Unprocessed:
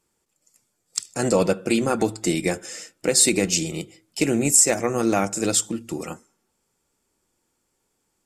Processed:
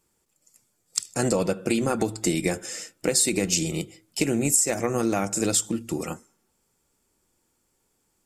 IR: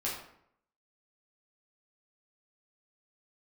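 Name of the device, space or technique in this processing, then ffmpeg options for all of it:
ASMR close-microphone chain: -af "lowshelf=f=170:g=4,acompressor=threshold=-19dB:ratio=10,highshelf=f=12k:g=7.5"

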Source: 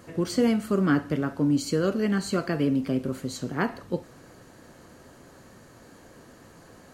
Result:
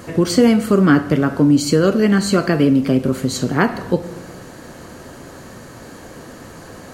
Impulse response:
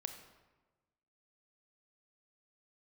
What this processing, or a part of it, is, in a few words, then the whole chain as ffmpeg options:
compressed reverb return: -filter_complex "[0:a]asplit=2[a][b];[1:a]atrim=start_sample=2205[c];[b][c]afir=irnorm=-1:irlink=0,acompressor=threshold=-31dB:ratio=6,volume=2.5dB[d];[a][d]amix=inputs=2:normalize=0,volume=7.5dB"

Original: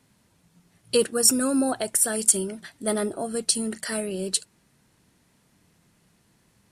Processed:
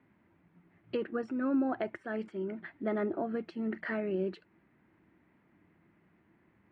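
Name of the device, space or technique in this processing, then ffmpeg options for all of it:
bass amplifier: -af "acompressor=threshold=-25dB:ratio=4,highpass=73,equalizer=f=130:t=q:w=4:g=-6,equalizer=f=330:t=q:w=4:g=9,equalizer=f=480:t=q:w=4:g=-4,equalizer=f=2.1k:t=q:w=4:g=4,lowpass=f=2.2k:w=0.5412,lowpass=f=2.2k:w=1.3066,volume=-3dB"

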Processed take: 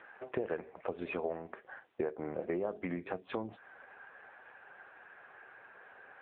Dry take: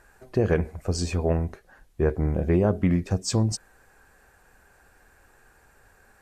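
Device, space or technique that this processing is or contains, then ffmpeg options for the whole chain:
voicemail: -af "highpass=430,lowpass=3.1k,acompressor=threshold=-41dB:ratio=6,volume=8dB" -ar 8000 -c:a libopencore_amrnb -b:a 6700

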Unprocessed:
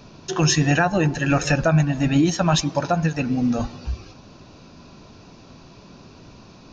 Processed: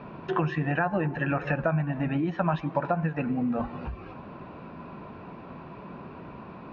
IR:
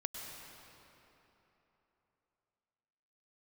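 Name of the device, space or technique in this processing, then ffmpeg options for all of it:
bass amplifier: -af "acompressor=threshold=-29dB:ratio=4,highpass=62,equalizer=f=68:t=q:w=4:g=-8,equalizer=f=110:t=q:w=4:g=-9,equalizer=f=280:t=q:w=4:g=-3,equalizer=f=1k:t=q:w=4:g=4,lowpass=f=2.3k:w=0.5412,lowpass=f=2.3k:w=1.3066,volume=4.5dB"

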